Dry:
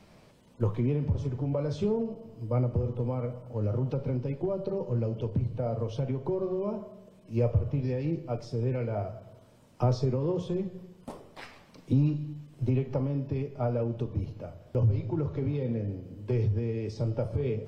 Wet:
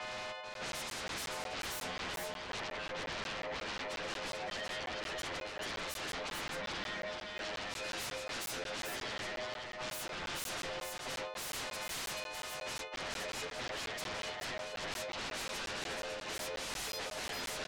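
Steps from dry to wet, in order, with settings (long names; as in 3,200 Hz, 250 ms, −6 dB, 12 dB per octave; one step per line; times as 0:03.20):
every partial snapped to a pitch grid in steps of 3 semitones
Butterworth high-pass 540 Hz 48 dB per octave
low-pass that shuts in the quiet parts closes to 2,200 Hz, open at −35 dBFS
low-pass filter 4,200 Hz 24 dB per octave
reversed playback
downward compressor 12 to 1, threshold −48 dBFS, peak gain reduction 22 dB
reversed playback
sine wavefolder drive 19 dB, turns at −38 dBFS
single-tap delay 436 ms −3.5 dB
regular buffer underruns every 0.18 s, samples 512, zero, from 0:00.54
level −1 dB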